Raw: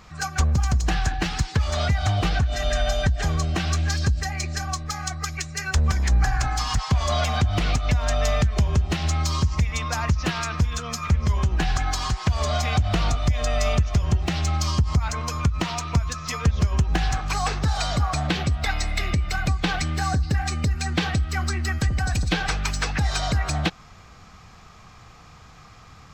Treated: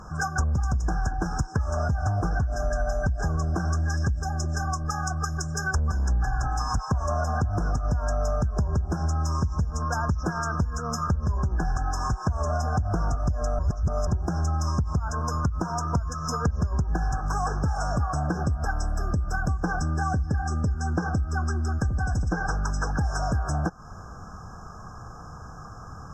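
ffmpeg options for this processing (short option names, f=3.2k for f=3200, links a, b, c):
-filter_complex "[0:a]asettb=1/sr,asplit=3[a][b][c];[a]atrim=end=19.834[d];[b]atrim=start=19.83:end=22.84,asetpts=PTS-STARTPTS,afade=t=in:d=0.004:c=qsin,afade=t=out:st=3.006:d=0.004:c=qsin,lowpass=8.6k[e];[c]atrim=start=22.836[f];[d][e]acrossfade=d=0.004:c1=hsin:c2=qsin[g];[g][f]acrossfade=d=0.004:c1=qsin:c2=hsin,asplit=3[h][i][j];[h]atrim=end=13.592[k];[i]atrim=start=13.588:end=14.072,asetpts=PTS-STARTPTS,areverse[l];[j]atrim=start=14.068[m];[k][l]acrossfade=d=0.004:c1=hsin:c2=hsin[n];[n][m]acrossfade=d=0.004:c1=hsin:c2=hsin,afftfilt=real='re*(1-between(b*sr/4096,1700,5100))':imag='im*(1-between(b*sr/4096,1700,5100))':win_size=4096:overlap=0.75,aemphasis=mode=reproduction:type=cd,acompressor=threshold=-32dB:ratio=3,volume=6.5dB"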